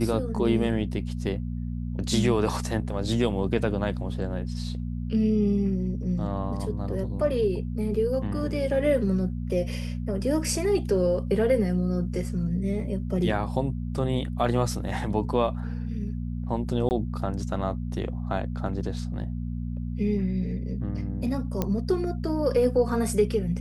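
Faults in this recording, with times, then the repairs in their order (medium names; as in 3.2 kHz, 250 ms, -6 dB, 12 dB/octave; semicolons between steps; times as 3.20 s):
hum 60 Hz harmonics 4 -31 dBFS
16.89–16.91 s: dropout 19 ms
21.62 s: pop -12 dBFS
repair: de-click; de-hum 60 Hz, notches 4; interpolate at 16.89 s, 19 ms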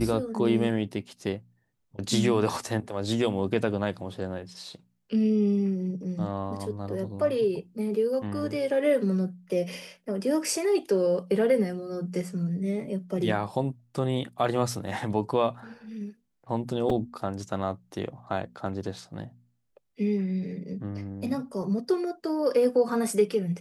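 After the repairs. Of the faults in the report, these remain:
nothing left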